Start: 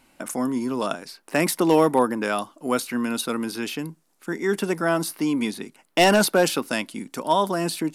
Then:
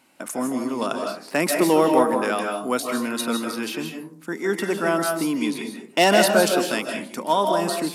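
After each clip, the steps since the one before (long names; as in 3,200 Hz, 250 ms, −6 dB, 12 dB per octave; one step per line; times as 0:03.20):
Bessel high-pass filter 180 Hz
comb and all-pass reverb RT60 0.54 s, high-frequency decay 0.4×, pre-delay 115 ms, DRR 3 dB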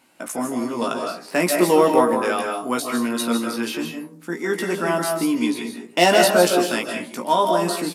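double-tracking delay 17 ms −4 dB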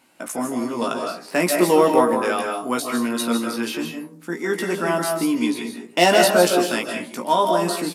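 no processing that can be heard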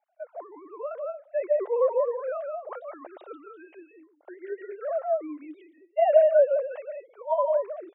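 three sine waves on the formant tracks
four-pole ladder band-pass 670 Hz, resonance 60%
notch filter 970 Hz, Q 15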